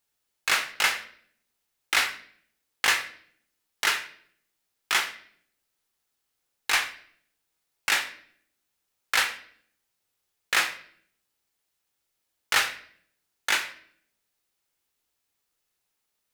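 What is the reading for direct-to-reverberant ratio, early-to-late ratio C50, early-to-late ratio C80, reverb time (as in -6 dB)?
7.0 dB, 12.0 dB, 15.5 dB, 0.60 s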